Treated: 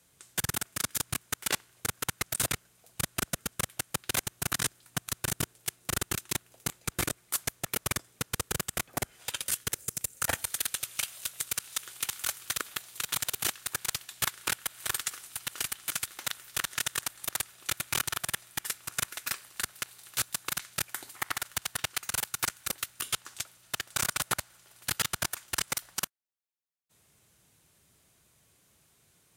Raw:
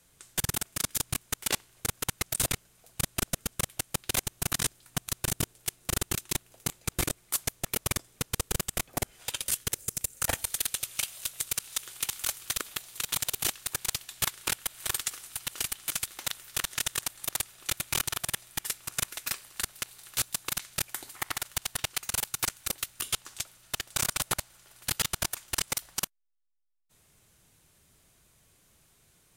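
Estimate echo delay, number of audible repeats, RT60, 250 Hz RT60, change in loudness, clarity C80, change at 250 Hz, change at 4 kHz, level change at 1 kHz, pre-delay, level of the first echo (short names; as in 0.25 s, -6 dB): none, none, none, none, -1.0 dB, none, -1.5 dB, -1.0 dB, +1.0 dB, none, none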